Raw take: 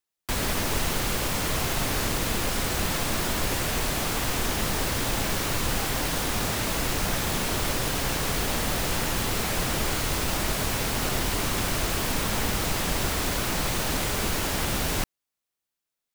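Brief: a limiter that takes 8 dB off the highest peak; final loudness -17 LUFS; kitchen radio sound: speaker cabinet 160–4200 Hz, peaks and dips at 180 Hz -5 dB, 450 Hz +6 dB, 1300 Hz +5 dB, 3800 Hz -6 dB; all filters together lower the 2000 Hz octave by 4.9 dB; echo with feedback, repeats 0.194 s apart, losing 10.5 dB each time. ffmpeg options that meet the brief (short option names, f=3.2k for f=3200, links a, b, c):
-af "equalizer=f=2k:t=o:g=-7.5,alimiter=limit=-21dB:level=0:latency=1,highpass=160,equalizer=f=180:t=q:w=4:g=-5,equalizer=f=450:t=q:w=4:g=6,equalizer=f=1.3k:t=q:w=4:g=5,equalizer=f=3.8k:t=q:w=4:g=-6,lowpass=f=4.2k:w=0.5412,lowpass=f=4.2k:w=1.3066,aecho=1:1:194|388|582:0.299|0.0896|0.0269,volume=16.5dB"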